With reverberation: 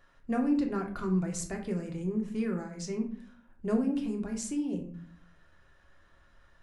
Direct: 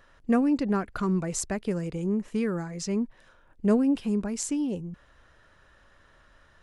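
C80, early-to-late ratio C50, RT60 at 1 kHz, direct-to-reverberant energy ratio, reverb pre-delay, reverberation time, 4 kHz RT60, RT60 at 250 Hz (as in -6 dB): 13.0 dB, 9.5 dB, 0.45 s, 2.0 dB, 3 ms, 0.50 s, 0.30 s, 0.75 s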